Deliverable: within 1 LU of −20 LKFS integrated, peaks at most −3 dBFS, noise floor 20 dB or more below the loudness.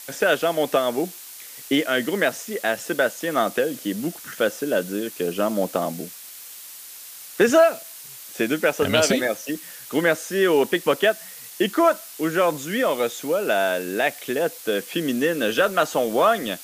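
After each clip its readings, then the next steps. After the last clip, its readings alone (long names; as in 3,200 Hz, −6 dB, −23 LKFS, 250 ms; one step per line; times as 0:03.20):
background noise floor −40 dBFS; target noise floor −43 dBFS; integrated loudness −22.5 LKFS; sample peak −3.0 dBFS; target loudness −20.0 LKFS
→ broadband denoise 6 dB, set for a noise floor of −40 dBFS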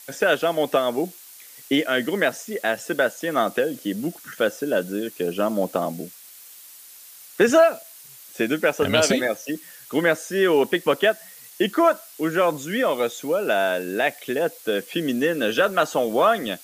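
background noise floor −45 dBFS; integrated loudness −22.5 LKFS; sample peak −3.0 dBFS; target loudness −20.0 LKFS
→ level +2.5 dB
brickwall limiter −3 dBFS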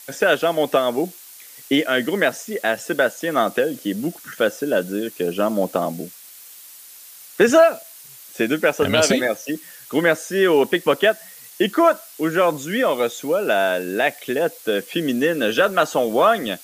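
integrated loudness −20.0 LKFS; sample peak −3.0 dBFS; background noise floor −43 dBFS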